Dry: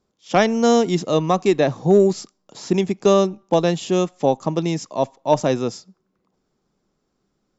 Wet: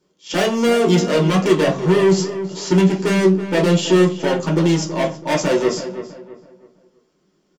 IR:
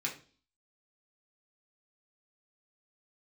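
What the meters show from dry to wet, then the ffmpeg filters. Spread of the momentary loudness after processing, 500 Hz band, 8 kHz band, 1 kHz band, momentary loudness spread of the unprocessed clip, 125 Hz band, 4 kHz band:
9 LU, +1.0 dB, can't be measured, −1.5 dB, 8 LU, +5.5 dB, +5.0 dB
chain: -filter_complex "[0:a]asoftclip=type=hard:threshold=-21.5dB,asplit=2[link_01][link_02];[link_02]adelay=327,lowpass=frequency=2200:poles=1,volume=-11dB,asplit=2[link_03][link_04];[link_04]adelay=327,lowpass=frequency=2200:poles=1,volume=0.35,asplit=2[link_05][link_06];[link_06]adelay=327,lowpass=frequency=2200:poles=1,volume=0.35,asplit=2[link_07][link_08];[link_08]adelay=327,lowpass=frequency=2200:poles=1,volume=0.35[link_09];[link_01][link_03][link_05][link_07][link_09]amix=inputs=5:normalize=0[link_10];[1:a]atrim=start_sample=2205,asetrate=57330,aresample=44100[link_11];[link_10][link_11]afir=irnorm=-1:irlink=0,volume=7.5dB"

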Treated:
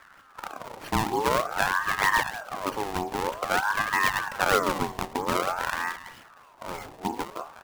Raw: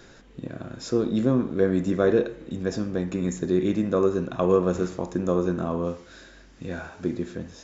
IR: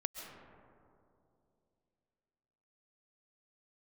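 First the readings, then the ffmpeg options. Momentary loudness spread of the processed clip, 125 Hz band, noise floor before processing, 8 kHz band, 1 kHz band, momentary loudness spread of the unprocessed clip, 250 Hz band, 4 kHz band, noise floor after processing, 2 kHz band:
16 LU, −9.5 dB, −51 dBFS, can't be measured, +11.0 dB, 15 LU, −11.0 dB, +10.0 dB, −54 dBFS, +13.5 dB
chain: -filter_complex "[0:a]asplit=2[link_01][link_02];[link_02]adelay=200,highpass=300,lowpass=3400,asoftclip=type=hard:threshold=-16dB,volume=-12dB[link_03];[link_01][link_03]amix=inputs=2:normalize=0,acrusher=samples=29:mix=1:aa=0.000001:lfo=1:lforange=46.4:lforate=3.2,aeval=exprs='val(0)*sin(2*PI*1000*n/s+1000*0.45/0.5*sin(2*PI*0.5*n/s))':channel_layout=same"

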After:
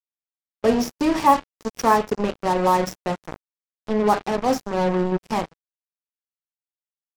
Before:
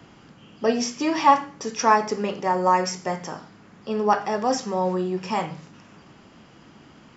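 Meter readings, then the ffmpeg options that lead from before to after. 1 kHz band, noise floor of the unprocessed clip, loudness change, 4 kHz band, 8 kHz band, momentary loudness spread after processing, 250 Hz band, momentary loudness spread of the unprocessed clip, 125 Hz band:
0.0 dB, −51 dBFS, +1.5 dB, −1.5 dB, can't be measured, 11 LU, +3.5 dB, 13 LU, +3.5 dB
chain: -af "acrusher=bits=3:mix=0:aa=0.5,tiltshelf=frequency=910:gain=4.5"

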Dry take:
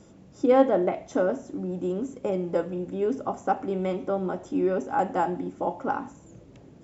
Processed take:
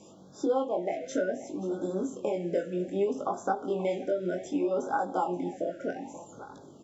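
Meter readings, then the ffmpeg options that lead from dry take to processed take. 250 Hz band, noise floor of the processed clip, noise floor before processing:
−4.5 dB, −52 dBFS, −52 dBFS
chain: -af "highpass=frequency=440:poles=1,acompressor=threshold=-30dB:ratio=5,flanger=delay=19.5:depth=4.1:speed=0.62,aecho=1:1:529:0.158,afftfilt=real='re*(1-between(b*sr/1024,960*pow(2400/960,0.5+0.5*sin(2*PI*0.65*pts/sr))/1.41,960*pow(2400/960,0.5+0.5*sin(2*PI*0.65*pts/sr))*1.41))':imag='im*(1-between(b*sr/1024,960*pow(2400/960,0.5+0.5*sin(2*PI*0.65*pts/sr))/1.41,960*pow(2400/960,0.5+0.5*sin(2*PI*0.65*pts/sr))*1.41))':win_size=1024:overlap=0.75,volume=7.5dB"

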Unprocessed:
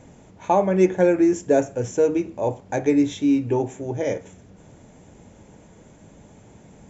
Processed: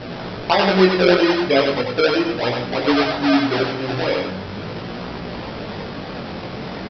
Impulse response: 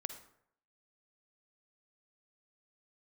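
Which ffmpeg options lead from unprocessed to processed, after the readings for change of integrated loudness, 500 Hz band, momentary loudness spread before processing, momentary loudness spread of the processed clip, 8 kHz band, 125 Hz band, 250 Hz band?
+2.5 dB, +3.0 dB, 10 LU, 15 LU, can't be measured, +4.0 dB, +2.0 dB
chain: -filter_complex "[0:a]aeval=exprs='val(0)+0.5*0.0708*sgn(val(0))':channel_layout=same,aresample=11025,acrusher=samples=8:mix=1:aa=0.000001:lfo=1:lforange=8:lforate=3.1,aresample=44100,lowshelf=frequency=130:gain=-9,asplit=2[link_01][link_02];[1:a]atrim=start_sample=2205,adelay=96[link_03];[link_02][link_03]afir=irnorm=-1:irlink=0,volume=-2dB[link_04];[link_01][link_04]amix=inputs=2:normalize=0,flanger=delay=16.5:depth=6.4:speed=0.39,volume=3dB"

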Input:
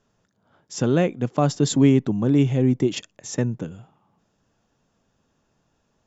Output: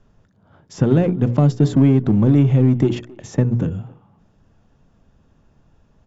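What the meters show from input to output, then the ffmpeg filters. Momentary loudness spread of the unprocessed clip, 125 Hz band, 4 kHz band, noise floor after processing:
15 LU, +7.5 dB, can't be measured, −59 dBFS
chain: -filter_complex "[0:a]aemphasis=mode=reproduction:type=bsi,bandreject=frequency=60:width_type=h:width=6,bandreject=frequency=120:width_type=h:width=6,bandreject=frequency=180:width_type=h:width=6,bandreject=frequency=240:width_type=h:width=6,bandreject=frequency=300:width_type=h:width=6,bandreject=frequency=360:width_type=h:width=6,bandreject=frequency=420:width_type=h:width=6,bandreject=frequency=480:width_type=h:width=6,acrossover=split=550|2000[link_01][link_02][link_03];[link_01]acompressor=threshold=-15dB:ratio=4[link_04];[link_02]acompressor=threshold=-34dB:ratio=4[link_05];[link_03]acompressor=threshold=-46dB:ratio=4[link_06];[link_04][link_05][link_06]amix=inputs=3:normalize=0,asplit=2[link_07][link_08];[link_08]asoftclip=type=hard:threshold=-24.5dB,volume=-7.5dB[link_09];[link_07][link_09]amix=inputs=2:normalize=0,asplit=2[link_10][link_11];[link_11]adelay=270,highpass=300,lowpass=3400,asoftclip=type=hard:threshold=-15dB,volume=-21dB[link_12];[link_10][link_12]amix=inputs=2:normalize=0,volume=3dB"

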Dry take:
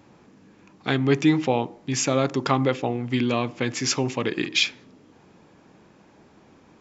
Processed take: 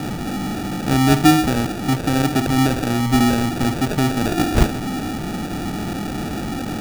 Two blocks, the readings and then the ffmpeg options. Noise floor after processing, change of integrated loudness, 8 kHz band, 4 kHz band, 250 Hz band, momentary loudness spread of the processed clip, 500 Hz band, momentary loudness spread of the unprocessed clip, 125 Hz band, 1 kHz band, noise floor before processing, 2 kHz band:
−27 dBFS, +4.0 dB, can't be measured, +1.5 dB, +8.0 dB, 11 LU, +1.0 dB, 7 LU, +8.5 dB, +7.5 dB, −55 dBFS, +4.0 dB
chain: -af "aeval=exprs='val(0)+0.5*0.0794*sgn(val(0))':channel_layout=same,lowpass=frequency=3100:width_type=q:width=9.2,lowshelf=frequency=420:width_type=q:width=1.5:gain=10.5,acrusher=samples=42:mix=1:aa=0.000001,volume=-7.5dB"

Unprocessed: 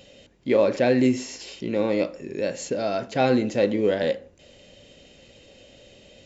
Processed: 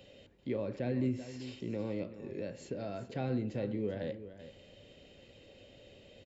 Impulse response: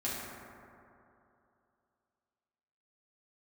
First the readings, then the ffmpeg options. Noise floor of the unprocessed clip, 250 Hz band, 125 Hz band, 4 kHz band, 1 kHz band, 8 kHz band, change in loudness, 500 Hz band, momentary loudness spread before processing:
−54 dBFS, −12.0 dB, −5.0 dB, −16.5 dB, −18.5 dB, can't be measured, −14.0 dB, −16.0 dB, 10 LU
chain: -filter_complex "[0:a]acrossover=split=200[link_01][link_02];[link_02]acompressor=threshold=-41dB:ratio=2[link_03];[link_01][link_03]amix=inputs=2:normalize=0,equalizer=frequency=100:width_type=o:width=0.67:gain=5,equalizer=frequency=400:width_type=o:width=0.67:gain=3,equalizer=frequency=6300:width_type=o:width=0.67:gain=-9,aecho=1:1:386:0.237,volume=-7dB"

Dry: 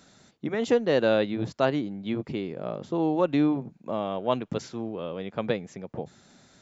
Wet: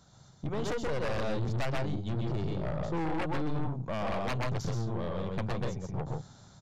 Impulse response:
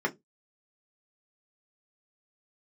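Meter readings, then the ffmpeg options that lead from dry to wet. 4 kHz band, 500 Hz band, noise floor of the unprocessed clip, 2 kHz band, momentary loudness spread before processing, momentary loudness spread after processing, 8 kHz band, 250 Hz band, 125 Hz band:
−5.5 dB, −9.0 dB, −60 dBFS, −4.0 dB, 12 LU, 5 LU, can't be measured, −8.0 dB, +4.0 dB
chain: -filter_complex "[0:a]aeval=exprs='0.355*(cos(1*acos(clip(val(0)/0.355,-1,1)))-cos(1*PI/2))+0.0224*(cos(3*acos(clip(val(0)/0.355,-1,1)))-cos(3*PI/2))+0.0282*(cos(4*acos(clip(val(0)/0.355,-1,1)))-cos(4*PI/2))':channel_layout=same,bandreject=frequency=2600:width=9.6,asplit=2[link_01][link_02];[link_02]aecho=0:1:128.3|160.3:0.708|0.398[link_03];[link_01][link_03]amix=inputs=2:normalize=0,acompressor=threshold=-24dB:ratio=6,equalizer=frequency=125:width_type=o:width=1:gain=9,equalizer=frequency=250:width_type=o:width=1:gain=-9,equalizer=frequency=500:width_type=o:width=1:gain=-3,equalizer=frequency=1000:width_type=o:width=1:gain=6,equalizer=frequency=2000:width_type=o:width=1:gain=-10,dynaudnorm=framelen=180:gausssize=5:maxgain=4dB,aresample=16000,aeval=exprs='0.0668*(abs(mod(val(0)/0.0668+3,4)-2)-1)':channel_layout=same,aresample=44100,lowshelf=frequency=100:gain=10,aeval=exprs='(tanh(28.2*val(0)+0.55)-tanh(0.55))/28.2':channel_layout=same"

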